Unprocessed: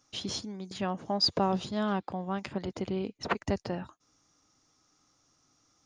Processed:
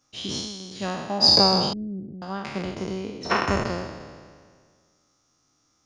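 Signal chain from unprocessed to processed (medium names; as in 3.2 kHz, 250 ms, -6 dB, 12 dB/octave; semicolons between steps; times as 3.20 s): spectral sustain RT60 1.88 s; 1.73–2.22 s: inverse Chebyshev low-pass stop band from 900 Hz, stop band 50 dB; upward expansion 1.5:1, over -35 dBFS; trim +5.5 dB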